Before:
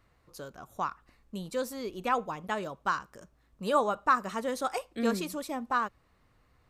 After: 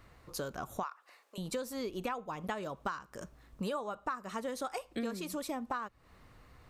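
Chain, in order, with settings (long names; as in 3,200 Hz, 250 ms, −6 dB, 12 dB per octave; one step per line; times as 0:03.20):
downward compressor 12 to 1, threshold −42 dBFS, peak gain reduction 23 dB
0:00.83–0:01.38: high-pass filter 500 Hz 24 dB per octave
level +8 dB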